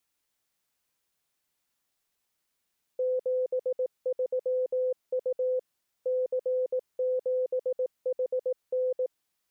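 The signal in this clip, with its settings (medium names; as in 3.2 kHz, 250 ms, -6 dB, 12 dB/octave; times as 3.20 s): Morse "73U C7HN" 18 wpm 509 Hz -24.5 dBFS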